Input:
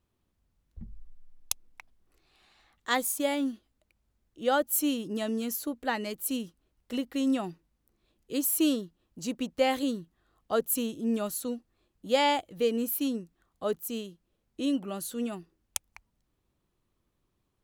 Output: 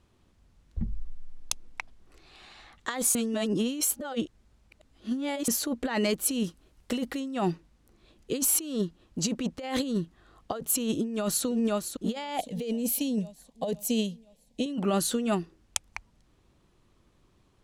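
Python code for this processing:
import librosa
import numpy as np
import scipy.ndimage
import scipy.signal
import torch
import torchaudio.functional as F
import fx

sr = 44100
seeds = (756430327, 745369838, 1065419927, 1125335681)

y = fx.high_shelf(x, sr, hz=10000.0, db=11.0, at=(6.44, 7.2))
y = fx.echo_throw(y, sr, start_s=10.99, length_s=0.46, ms=510, feedback_pct=50, wet_db=-8.5)
y = fx.fixed_phaser(y, sr, hz=350.0, stages=6, at=(12.38, 14.66))
y = fx.edit(y, sr, fx.reverse_span(start_s=3.15, length_s=2.33), tone=tone)
y = scipy.signal.sosfilt(scipy.signal.butter(2, 8400.0, 'lowpass', fs=sr, output='sos'), y)
y = fx.over_compress(y, sr, threshold_db=-36.0, ratio=-1.0)
y = y * librosa.db_to_amplitude(7.0)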